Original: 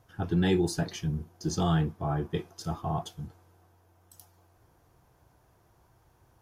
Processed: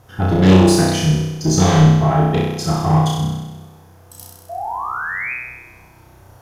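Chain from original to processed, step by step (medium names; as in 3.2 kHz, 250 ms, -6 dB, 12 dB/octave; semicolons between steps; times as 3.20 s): sine folder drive 6 dB, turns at -15.5 dBFS; painted sound rise, 4.49–5.34 s, 660–2600 Hz -32 dBFS; flutter echo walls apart 5.5 m, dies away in 1.1 s; trim +3 dB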